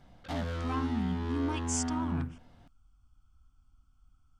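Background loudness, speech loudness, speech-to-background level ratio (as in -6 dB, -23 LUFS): -35.5 LUFS, -36.5 LUFS, -1.0 dB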